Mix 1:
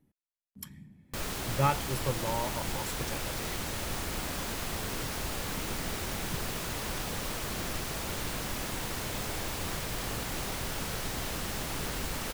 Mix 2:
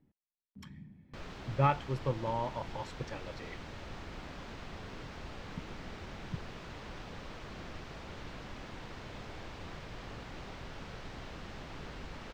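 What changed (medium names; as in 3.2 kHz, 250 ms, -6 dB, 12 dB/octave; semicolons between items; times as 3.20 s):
background -8.5 dB; master: add distance through air 180 m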